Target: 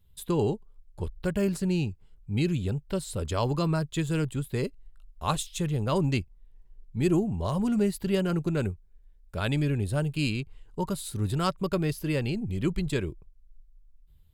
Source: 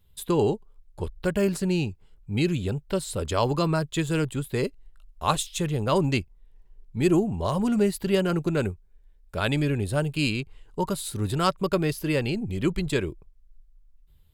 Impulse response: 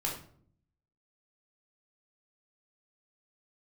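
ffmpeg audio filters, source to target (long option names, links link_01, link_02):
-af "bass=frequency=250:gain=5,treble=frequency=4000:gain=1,volume=-5dB"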